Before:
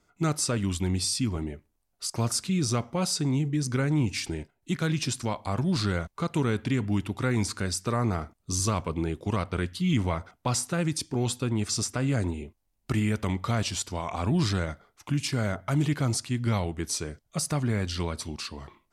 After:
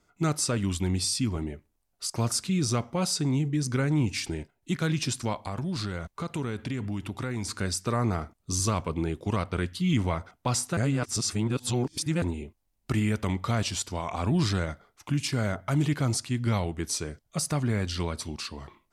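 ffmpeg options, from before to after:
-filter_complex "[0:a]asettb=1/sr,asplit=3[a][b][c];[a]atrim=end=5.434[d];[b]atrim=start=5.43:end=7.6,asetpts=PTS-STARTPTS,afade=t=in:d=0.004:c=qsin,afade=t=out:st=2.166:d=0.004:c=qsin,acompressor=threshold=-28dB:ratio=4:attack=3.2:release=140:knee=1:detection=peak[e];[c]atrim=start=7.596[f];[d][e]acrossfade=d=0.004:c1=hsin:c2=qsin[g];[g][f]acrossfade=d=0.004:c1=qsin:c2=hsin,asplit=3[h][i][j];[h]atrim=end=10.772[k];[i]atrim=start=10.768:end=12.222,asetpts=PTS-STARTPTS,areverse[l];[j]atrim=start=12.218[m];[k][l]acrossfade=d=0.004:c1=hsin:c2=hsin[n];[n][m]acrossfade=d=0.004:c1=hsin:c2=hsin"

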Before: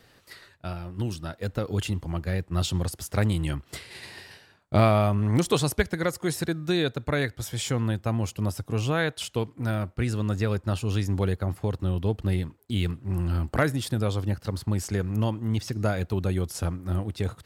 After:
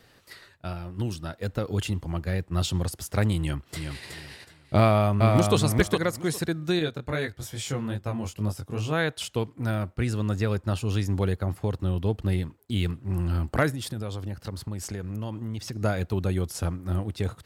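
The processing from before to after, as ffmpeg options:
-filter_complex "[0:a]asplit=2[a][b];[b]afade=t=in:st=3.39:d=0.01,afade=t=out:st=4.07:d=0.01,aecho=0:1:370|740|1110:0.530884|0.132721|0.0331803[c];[a][c]amix=inputs=2:normalize=0,asplit=2[d][e];[e]afade=t=in:st=4.79:d=0.01,afade=t=out:st=5.56:d=0.01,aecho=0:1:410|820|1230:0.707946|0.106192|0.0159288[f];[d][f]amix=inputs=2:normalize=0,asettb=1/sr,asplit=3[g][h][i];[g]atrim=end=6.794[j];[h]atrim=start=6.79:end=8.93,asetpts=PTS-STARTPTS,afade=t=in:d=0.004:c=qsin,afade=t=out:st=2.136:d=0.004:c=qsin,flanger=delay=19:depth=3.8:speed=2.4[k];[i]atrim=start=8.926[l];[j][k]acrossfade=d=0.004:c1=hsin:c2=qsin[m];[m][l]acrossfade=d=0.004:c1=qsin:c2=hsin,asplit=3[n][o][p];[n]afade=t=out:st=13.7:d=0.02[q];[o]acompressor=threshold=-29dB:ratio=6:attack=3.2:release=140:knee=1:detection=peak,afade=t=in:st=13.7:d=0.02,afade=t=out:st=15.81:d=0.02[r];[p]afade=t=in:st=15.81:d=0.02[s];[q][r][s]amix=inputs=3:normalize=0"

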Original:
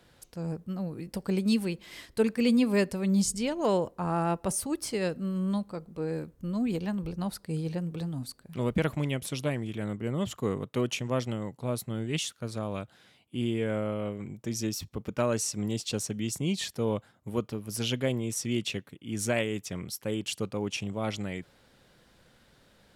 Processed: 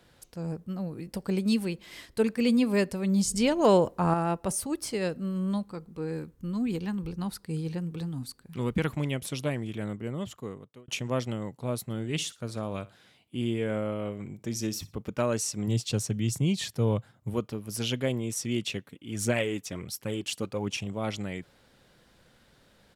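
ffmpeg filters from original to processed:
-filter_complex "[0:a]asettb=1/sr,asplit=3[a][b][c];[a]atrim=end=3.314[d];[b]atrim=start=3.31:end=4.14,asetpts=PTS-STARTPTS,afade=t=in:d=0.004:c=qsin,afade=t=out:st=0.826:d=0.004:c=qsin,acontrast=45[e];[c]atrim=start=4.136[f];[d][e]acrossfade=d=0.004:c1=hsin:c2=qsin[g];[g][f]acrossfade=d=0.004:c1=qsin:c2=hsin,asettb=1/sr,asplit=3[h][i][j];[h]atrim=end=5.654[k];[i]atrim=start=5.65:end=8.95,asetpts=PTS-STARTPTS,afade=t=in:d=0.004:c=qsin,afade=t=out:st=3.296:d=0.004:c=qsin,equalizer=f=620:t=o:w=0.33:g=-11[l];[j]atrim=start=8.946[m];[k][l]acrossfade=d=0.004:c1=hsin:c2=qsin[n];[n][m]acrossfade=d=0.004:c1=qsin:c2=hsin,asplit=3[o][p][q];[o]afade=t=out:st=11.89:d=0.02[r];[p]aecho=1:1:60|120:0.112|0.0292,afade=t=in:st=11.89:d=0.02,afade=t=out:st=14.93:d=0.02[s];[q]afade=t=in:st=14.93:d=0.02[t];[r][s][t]amix=inputs=3:normalize=0,asettb=1/sr,asplit=3[u][v][w];[u]atrim=end=15.674[x];[v]atrim=start=15.67:end=17.34,asetpts=PTS-STARTPTS,afade=t=in:d=0.004:c=qsin,afade=t=out:st=1.666:d=0.004:c=qsin,equalizer=f=120:w=1.7:g=9.5[y];[w]atrim=start=17.336[z];[x][y]acrossfade=d=0.004:c1=hsin:c2=qsin[aa];[aa][z]acrossfade=d=0.004:c1=qsin:c2=hsin,asplit=3[ab][ac][ad];[ab]afade=t=out:st=18.89:d=0.02[ae];[ac]aphaser=in_gain=1:out_gain=1:delay=4.5:decay=0.38:speed=1.4:type=triangular,afade=t=in:st=18.89:d=0.02,afade=t=out:st=20.86:d=0.02[af];[ad]afade=t=in:st=20.86:d=0.02[ag];[ae][af][ag]amix=inputs=3:normalize=0,asplit=2[ah][ai];[ah]atrim=end=10.88,asetpts=PTS-STARTPTS,afade=t=out:st=9.8:d=1.08[aj];[ai]atrim=start=10.88,asetpts=PTS-STARTPTS,afade=t=in:d=0.004:c=hsin[ak];[aj][ak]concat=n=2:v=0:a=1"

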